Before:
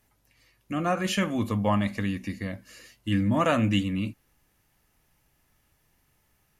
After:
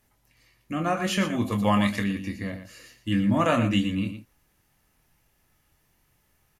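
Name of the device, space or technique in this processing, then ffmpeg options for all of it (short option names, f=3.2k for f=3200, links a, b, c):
slapback doubling: -filter_complex "[0:a]asplit=3[a][b][c];[b]adelay=25,volume=-8dB[d];[c]adelay=117,volume=-10dB[e];[a][d][e]amix=inputs=3:normalize=0,asettb=1/sr,asplit=3[f][g][h];[f]atrim=end=1.524[i];[g]atrim=start=1.52:end=2.04,asetpts=PTS-STARTPTS,afade=t=in:d=0.004:c=qsin,afade=t=out:st=0.516:d=0.004:c=qsin,highshelf=f=2.1k:g=9.5[j];[h]atrim=start=2.036[k];[i][j]acrossfade=d=0.004:c1=hsin:c2=qsin[l];[l][k]acrossfade=d=0.004:c1=qsin:c2=hsin"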